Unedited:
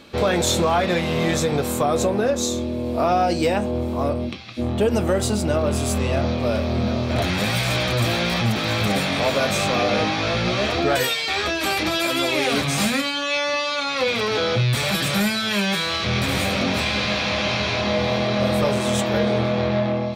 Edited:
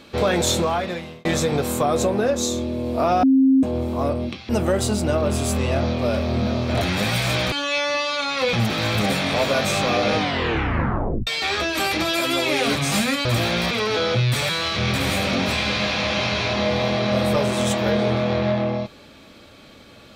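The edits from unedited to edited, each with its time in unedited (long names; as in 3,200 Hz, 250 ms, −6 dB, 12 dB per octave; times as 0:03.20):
0:00.50–0:01.25: fade out
0:03.23–0:03.63: beep over 266 Hz −11.5 dBFS
0:04.49–0:04.90: remove
0:07.93–0:08.39: swap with 0:13.11–0:14.12
0:10.03: tape stop 1.10 s
0:14.90–0:15.77: remove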